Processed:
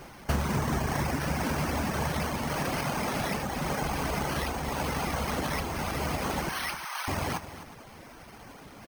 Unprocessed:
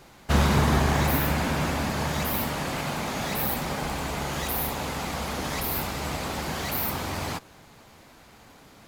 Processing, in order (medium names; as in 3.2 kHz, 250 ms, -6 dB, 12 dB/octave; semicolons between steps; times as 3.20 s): reverb removal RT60 0.72 s; 6.49–7.08 s: high-pass 940 Hz 24 dB/octave; compression 4:1, threshold -33 dBFS, peak gain reduction 14 dB; on a send: multi-tap echo 257/358 ms -13/-18.5 dB; on the sum: careless resampling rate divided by 6×, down filtered, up hold; trim +6 dB